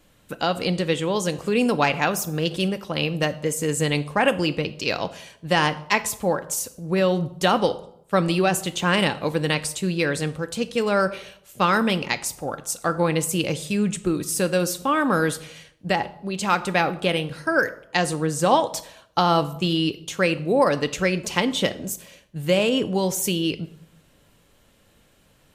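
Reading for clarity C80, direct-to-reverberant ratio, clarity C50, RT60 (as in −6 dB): 19.0 dB, 10.0 dB, 16.5 dB, 0.70 s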